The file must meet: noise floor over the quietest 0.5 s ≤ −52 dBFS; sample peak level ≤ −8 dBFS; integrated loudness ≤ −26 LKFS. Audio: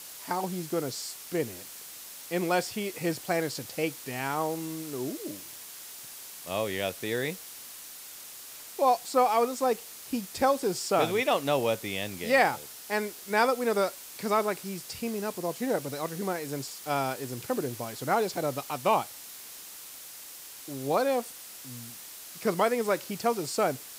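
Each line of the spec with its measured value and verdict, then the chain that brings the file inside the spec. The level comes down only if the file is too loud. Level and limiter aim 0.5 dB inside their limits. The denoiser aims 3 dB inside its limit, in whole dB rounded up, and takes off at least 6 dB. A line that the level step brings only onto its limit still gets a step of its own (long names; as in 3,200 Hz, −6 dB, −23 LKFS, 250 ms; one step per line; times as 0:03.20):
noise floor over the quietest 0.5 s −45 dBFS: out of spec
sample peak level −9.5 dBFS: in spec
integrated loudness −29.5 LKFS: in spec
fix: broadband denoise 10 dB, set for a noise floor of −45 dBFS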